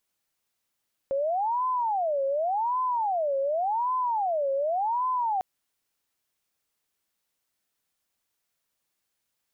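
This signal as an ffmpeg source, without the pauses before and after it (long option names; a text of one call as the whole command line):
ffmpeg -f lavfi -i "aevalsrc='0.0668*sin(2*PI*(781.5*t-238.5/(2*PI*0.88)*sin(2*PI*0.88*t)))':duration=4.3:sample_rate=44100" out.wav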